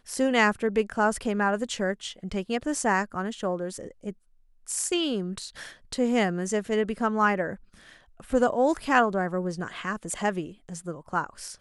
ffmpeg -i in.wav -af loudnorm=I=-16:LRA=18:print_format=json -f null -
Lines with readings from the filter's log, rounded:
"input_i" : "-27.3",
"input_tp" : "-7.0",
"input_lra" : "3.9",
"input_thresh" : "-37.8",